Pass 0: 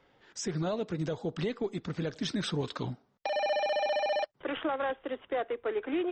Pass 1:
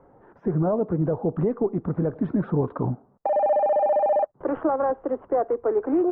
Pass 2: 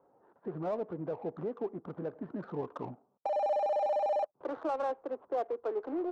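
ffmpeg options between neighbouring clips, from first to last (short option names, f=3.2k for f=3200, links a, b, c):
-filter_complex "[0:a]asplit=2[a][b];[b]alimiter=level_in=8.5dB:limit=-24dB:level=0:latency=1:release=89,volume=-8.5dB,volume=-1.5dB[c];[a][c]amix=inputs=2:normalize=0,lowpass=f=1.1k:w=0.5412,lowpass=f=1.1k:w=1.3066,volume=7dB"
-af "bandpass=f=1.1k:t=q:w=0.51:csg=0,adynamicsmooth=sensitivity=6.5:basefreq=1.3k,volume=-8dB"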